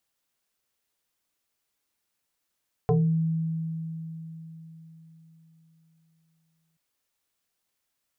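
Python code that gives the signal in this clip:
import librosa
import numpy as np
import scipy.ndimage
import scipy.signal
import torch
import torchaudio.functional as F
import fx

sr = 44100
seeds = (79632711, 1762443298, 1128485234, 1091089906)

y = fx.fm2(sr, length_s=3.88, level_db=-17.5, carrier_hz=162.0, ratio=1.78, index=2.1, index_s=0.37, decay_s=4.23, shape='exponential')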